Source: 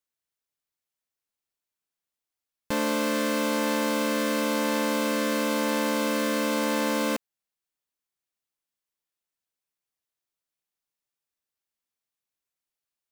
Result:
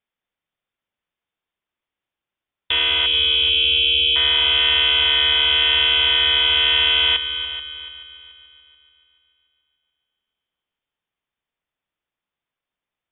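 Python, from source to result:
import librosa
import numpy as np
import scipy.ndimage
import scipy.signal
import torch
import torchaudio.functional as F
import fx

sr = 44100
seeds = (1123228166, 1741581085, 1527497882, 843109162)

y = fx.freq_invert(x, sr, carrier_hz=3600)
y = fx.brickwall_bandstop(y, sr, low_hz=540.0, high_hz=2200.0, at=(3.06, 4.16))
y = fx.echo_heads(y, sr, ms=144, heads='second and third', feedback_pct=43, wet_db=-13.5)
y = y * 10.0 ** (7.5 / 20.0)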